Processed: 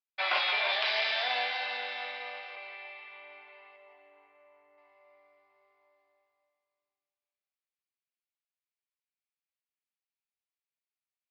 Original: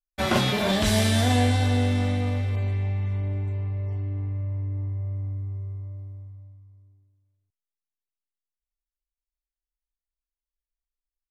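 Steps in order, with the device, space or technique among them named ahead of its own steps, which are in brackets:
0:03.76–0:04.78: low-pass filter 1,200 Hz 6 dB per octave
musical greeting card (downsampling to 11,025 Hz; high-pass filter 690 Hz 24 dB per octave; parametric band 2,400 Hz +8 dB 0.49 octaves)
feedback echo with a high-pass in the loop 169 ms, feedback 56%, high-pass 420 Hz, level −10 dB
level −4 dB

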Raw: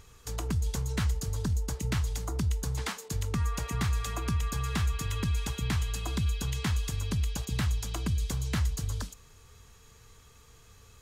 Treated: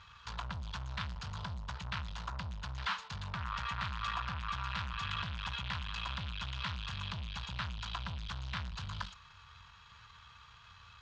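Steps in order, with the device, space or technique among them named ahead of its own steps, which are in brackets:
scooped metal amplifier (tube saturation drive 39 dB, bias 0.75; loudspeaker in its box 82–3,700 Hz, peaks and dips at 190 Hz +6 dB, 450 Hz −8 dB, 1,000 Hz +9 dB, 1,400 Hz +6 dB, 2,100 Hz −4 dB; guitar amp tone stack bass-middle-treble 10-0-10)
level +13.5 dB

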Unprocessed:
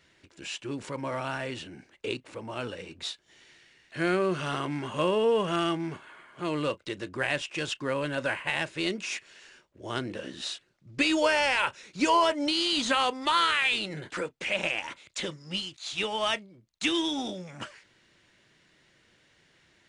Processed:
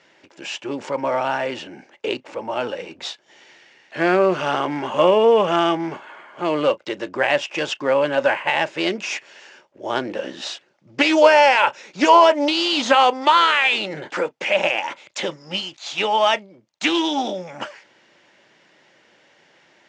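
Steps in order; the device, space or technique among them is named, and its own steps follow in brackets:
full-range speaker at full volume (highs frequency-modulated by the lows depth 0.16 ms; loudspeaker in its box 220–6,600 Hz, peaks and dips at 570 Hz +6 dB, 840 Hz +8 dB, 4,000 Hz −5 dB)
level +8 dB

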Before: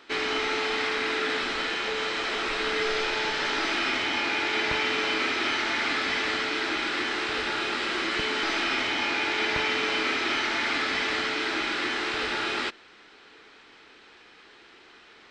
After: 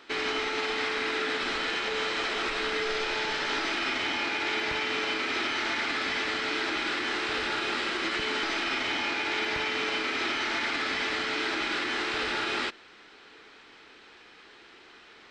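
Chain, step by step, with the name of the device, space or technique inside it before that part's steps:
clipper into limiter (hard clipping −15 dBFS, distortion −46 dB; brickwall limiter −20.5 dBFS, peak gain reduction 5.5 dB)

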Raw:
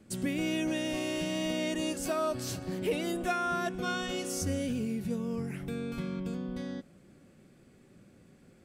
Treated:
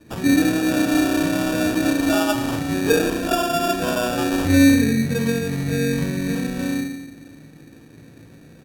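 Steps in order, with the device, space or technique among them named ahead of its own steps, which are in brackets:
feedback delay network reverb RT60 0.84 s, low-frequency decay 1.25×, high-frequency decay 0.55×, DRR −6 dB
crushed at another speed (tape speed factor 1.25×; decimation without filtering 17×; tape speed factor 0.8×)
level +4 dB

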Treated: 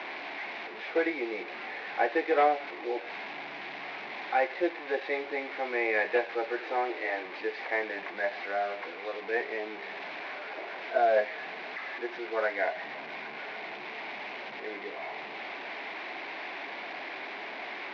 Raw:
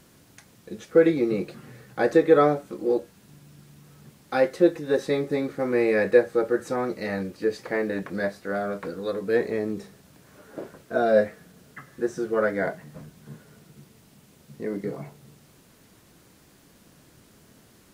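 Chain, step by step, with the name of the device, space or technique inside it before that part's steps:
digital answering machine (band-pass filter 360–3,300 Hz; linear delta modulator 32 kbit/s, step −31 dBFS; loudspeaker in its box 480–3,400 Hz, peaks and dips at 500 Hz −8 dB, 750 Hz +5 dB, 1,300 Hz −8 dB, 2,200 Hz +7 dB, 3,100 Hz −5 dB)
0:06.60–0:07.26: low shelf with overshoot 240 Hz −9 dB, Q 3

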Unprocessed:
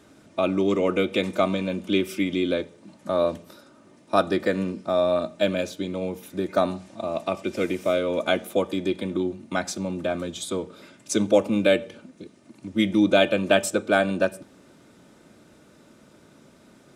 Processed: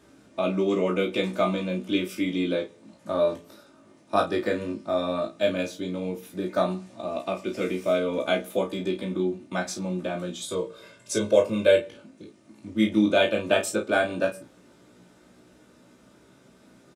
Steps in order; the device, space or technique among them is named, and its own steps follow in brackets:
0:10.48–0:11.79: comb filter 1.9 ms, depth 60%
double-tracked vocal (double-tracking delay 33 ms −7 dB; chorus effect 0.12 Hz, delay 15.5 ms, depth 3.3 ms)

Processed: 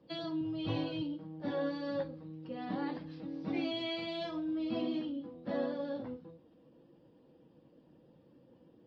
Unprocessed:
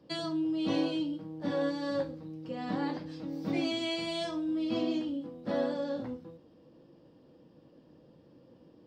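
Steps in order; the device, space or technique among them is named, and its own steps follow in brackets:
clip after many re-uploads (low-pass filter 4,400 Hz 24 dB per octave; spectral magnitudes quantised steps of 15 dB)
0:00.41–0:01.02: low shelf with overshoot 160 Hz +9 dB, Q 3
level −3.5 dB

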